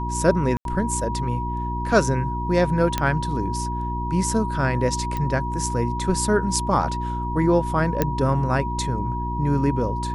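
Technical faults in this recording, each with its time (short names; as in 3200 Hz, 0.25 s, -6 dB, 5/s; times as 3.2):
hum 60 Hz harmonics 6 -28 dBFS
tone 960 Hz -28 dBFS
0.57–0.65 gap 82 ms
2.98 pop -7 dBFS
5.17 pop -15 dBFS
8.02 pop -6 dBFS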